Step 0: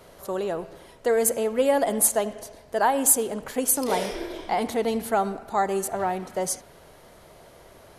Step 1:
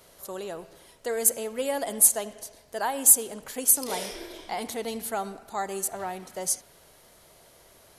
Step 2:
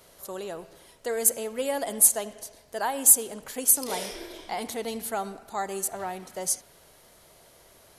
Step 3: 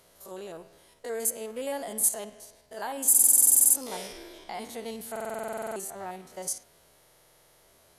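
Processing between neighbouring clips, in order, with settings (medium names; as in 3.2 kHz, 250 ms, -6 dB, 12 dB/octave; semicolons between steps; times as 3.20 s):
treble shelf 2.9 kHz +12 dB; trim -8.5 dB
no audible change
spectrogram pixelated in time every 50 ms; buffer glitch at 3.10/5.11/6.98 s, samples 2048, times 13; trim -3.5 dB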